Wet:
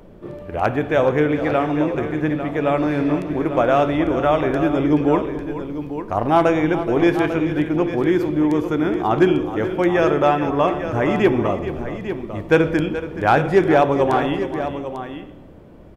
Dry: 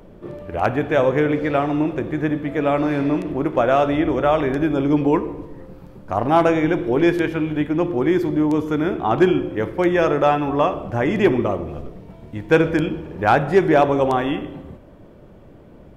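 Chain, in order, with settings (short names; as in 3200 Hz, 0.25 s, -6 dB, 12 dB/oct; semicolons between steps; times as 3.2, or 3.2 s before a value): tapped delay 0.427/0.848 s -12.5/-10.5 dB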